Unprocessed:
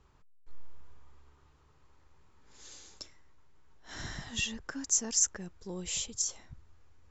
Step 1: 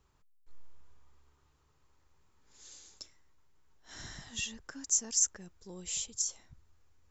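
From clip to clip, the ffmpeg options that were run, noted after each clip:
ffmpeg -i in.wav -af "highshelf=frequency=5300:gain=10,volume=-7dB" out.wav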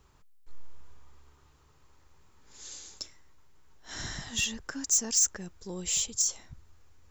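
ffmpeg -i in.wav -af "asoftclip=type=tanh:threshold=-27.5dB,volume=8.5dB" out.wav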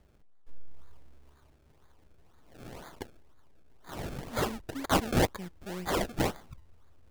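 ffmpeg -i in.wav -af "acrusher=samples=31:mix=1:aa=0.000001:lfo=1:lforange=31:lforate=2" out.wav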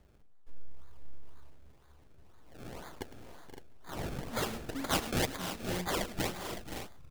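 ffmpeg -i in.wav -filter_complex "[0:a]acrossover=split=1900[link_01][link_02];[link_01]alimiter=level_in=2dB:limit=-24dB:level=0:latency=1:release=438,volume=-2dB[link_03];[link_03][link_02]amix=inputs=2:normalize=0,aecho=1:1:106|478|519|561:0.178|0.2|0.282|0.299" out.wav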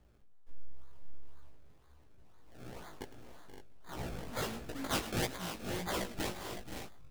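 ffmpeg -i in.wav -af "flanger=delay=16:depth=3.8:speed=1.5" out.wav

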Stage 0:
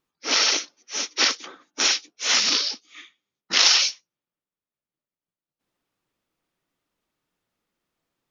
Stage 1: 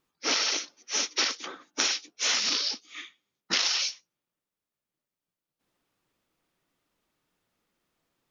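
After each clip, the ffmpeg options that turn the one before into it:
ffmpeg -i in.wav -af "acompressor=threshold=-26dB:ratio=8,volume=2.5dB" out.wav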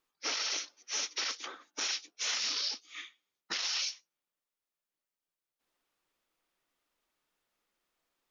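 ffmpeg -i in.wav -af "equalizer=frequency=130:width_type=o:width=2.5:gain=-12.5,alimiter=limit=-21dB:level=0:latency=1:release=30,volume=-3dB" out.wav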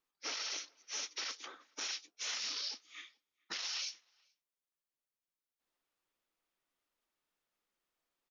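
ffmpeg -i in.wav -filter_complex "[0:a]asplit=2[link_01][link_02];[link_02]adelay=431.5,volume=-29dB,highshelf=frequency=4000:gain=-9.71[link_03];[link_01][link_03]amix=inputs=2:normalize=0,volume=-6dB" out.wav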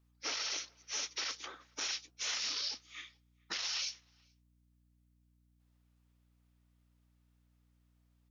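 ffmpeg -i in.wav -af "aeval=exprs='val(0)+0.000251*(sin(2*PI*60*n/s)+sin(2*PI*2*60*n/s)/2+sin(2*PI*3*60*n/s)/3+sin(2*PI*4*60*n/s)/4+sin(2*PI*5*60*n/s)/5)':channel_layout=same,volume=2.5dB" out.wav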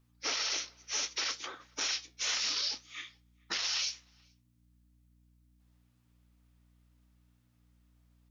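ffmpeg -i in.wav -af "flanger=delay=7.7:depth=9.1:regen=-68:speed=0.67:shape=triangular,volume=8.5dB" out.wav

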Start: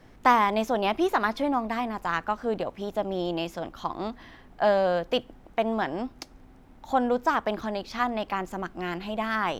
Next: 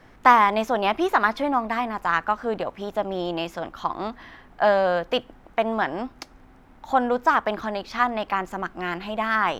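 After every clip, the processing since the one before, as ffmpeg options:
ffmpeg -i in.wav -af "equalizer=frequency=1400:width=0.66:gain=6.5" out.wav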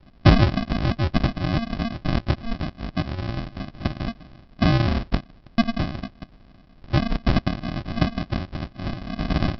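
ffmpeg -i in.wav -af "aexciter=amount=9.3:drive=4.1:freq=4100,aresample=11025,acrusher=samples=24:mix=1:aa=0.000001,aresample=44100" out.wav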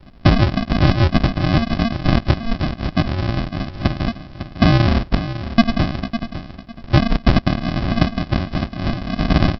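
ffmpeg -i in.wav -af "aecho=1:1:553|1106|1659:0.251|0.0553|0.0122,alimiter=limit=-10dB:level=0:latency=1:release=457,volume=7.5dB" out.wav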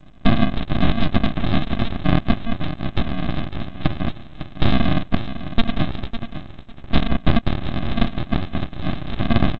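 ffmpeg -i in.wav -af "aresample=8000,aeval=exprs='abs(val(0))':channel_layout=same,aresample=44100" -ar 16000 -c:a g722 out.g722

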